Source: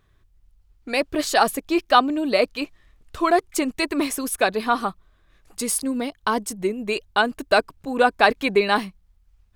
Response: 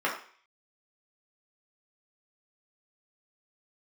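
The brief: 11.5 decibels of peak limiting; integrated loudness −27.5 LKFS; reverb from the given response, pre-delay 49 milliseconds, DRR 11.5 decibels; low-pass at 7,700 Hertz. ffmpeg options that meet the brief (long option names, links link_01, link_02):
-filter_complex "[0:a]lowpass=7700,alimiter=limit=-13dB:level=0:latency=1,asplit=2[link_01][link_02];[1:a]atrim=start_sample=2205,adelay=49[link_03];[link_02][link_03]afir=irnorm=-1:irlink=0,volume=-23dB[link_04];[link_01][link_04]amix=inputs=2:normalize=0,volume=-2dB"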